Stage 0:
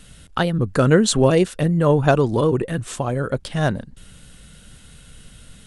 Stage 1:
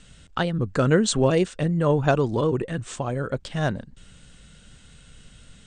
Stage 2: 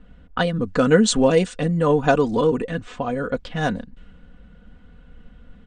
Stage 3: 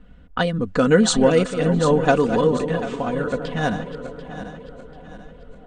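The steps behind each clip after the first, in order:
Chebyshev low-pass 8700 Hz, order 6; gain -3.5 dB
low-pass opened by the level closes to 1100 Hz, open at -19.5 dBFS; comb 4.1 ms, depth 66%; gain +2 dB
regenerating reverse delay 0.37 s, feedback 63%, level -10 dB; narrowing echo 0.66 s, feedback 59%, band-pass 510 Hz, level -17 dB

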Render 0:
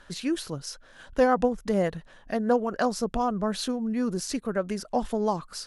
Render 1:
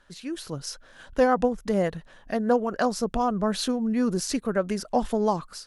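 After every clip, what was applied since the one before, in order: AGC gain up to 11.5 dB; gain -8 dB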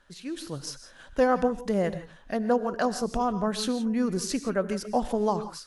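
non-linear reverb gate 0.19 s rising, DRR 11.5 dB; gain -2 dB

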